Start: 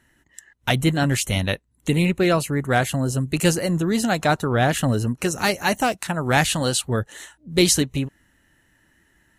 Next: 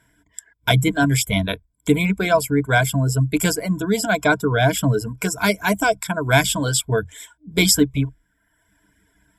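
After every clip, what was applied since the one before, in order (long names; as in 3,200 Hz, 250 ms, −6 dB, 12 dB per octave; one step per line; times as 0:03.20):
reverb reduction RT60 0.85 s
EQ curve with evenly spaced ripples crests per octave 1.7, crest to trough 17 dB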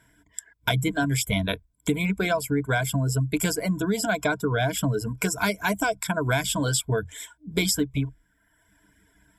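downward compressor 6 to 1, threshold −21 dBFS, peak gain reduction 11 dB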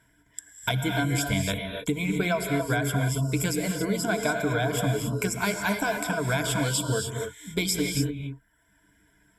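reverb whose tail is shaped and stops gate 310 ms rising, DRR 3 dB
level −3 dB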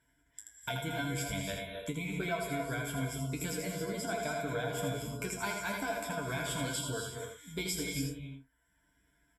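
tuned comb filter 53 Hz, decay 0.19 s, harmonics odd, mix 90%
on a send: single-tap delay 81 ms −5.5 dB
on the sum: level −2.5 dB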